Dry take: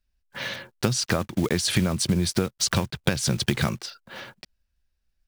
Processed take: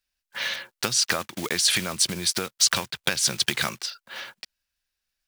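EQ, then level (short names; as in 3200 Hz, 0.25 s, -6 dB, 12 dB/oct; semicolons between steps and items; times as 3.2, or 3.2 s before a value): tilt shelf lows -6.5 dB, about 800 Hz; low shelf 150 Hz -11 dB; -1.0 dB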